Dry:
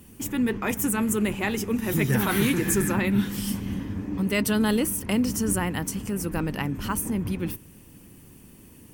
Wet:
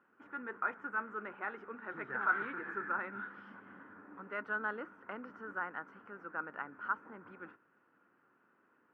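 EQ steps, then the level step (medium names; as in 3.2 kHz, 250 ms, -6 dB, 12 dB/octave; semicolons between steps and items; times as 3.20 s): high-pass 490 Hz 12 dB/octave; four-pole ladder low-pass 1.5 kHz, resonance 80%; -1.5 dB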